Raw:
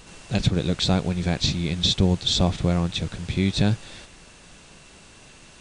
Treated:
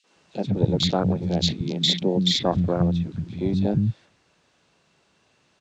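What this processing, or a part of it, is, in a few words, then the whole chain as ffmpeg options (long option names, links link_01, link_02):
over-cleaned archive recording: -filter_complex "[0:a]highpass=120,lowpass=5100,afwtdn=0.0447,asettb=1/sr,asplit=3[link_01][link_02][link_03];[link_01]atrim=end=1.454[link_04];[link_02]atrim=start=1.45:end=2.18,asetpts=PTS-STARTPTS,afade=type=in:duration=0.004:curve=qsin,afade=type=out:start_time=0.726:duration=0.004:curve=qsin,highpass=frequency=160:width=0.5412,highpass=frequency=160:width=1.3066[link_05];[link_03]atrim=start=2.176[link_06];[link_04][link_05]acrossfade=duration=0.004:curve1=hsin:curve2=qsin[link_07];[link_07][link_06]acrossfade=duration=0.004:curve1=qsin:curve2=hsin,acrossover=split=220|2600[link_08][link_09][link_10];[link_09]adelay=40[link_11];[link_08]adelay=160[link_12];[link_12][link_11][link_10]amix=inputs=3:normalize=0,volume=4dB"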